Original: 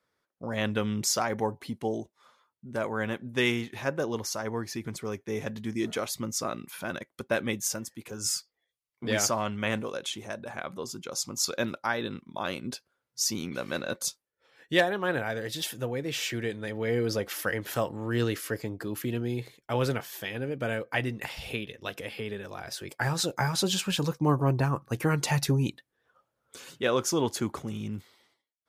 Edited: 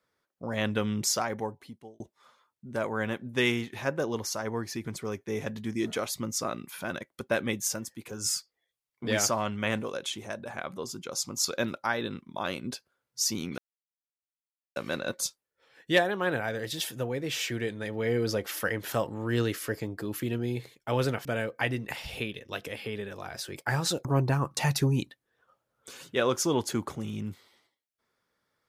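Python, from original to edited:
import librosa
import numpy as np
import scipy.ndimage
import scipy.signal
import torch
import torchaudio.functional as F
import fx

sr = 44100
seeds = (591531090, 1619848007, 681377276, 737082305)

y = fx.edit(x, sr, fx.fade_out_span(start_s=1.06, length_s=0.94),
    fx.insert_silence(at_s=13.58, length_s=1.18),
    fx.cut(start_s=20.07, length_s=0.51),
    fx.cut(start_s=23.38, length_s=0.98),
    fx.cut(start_s=24.88, length_s=0.36), tone=tone)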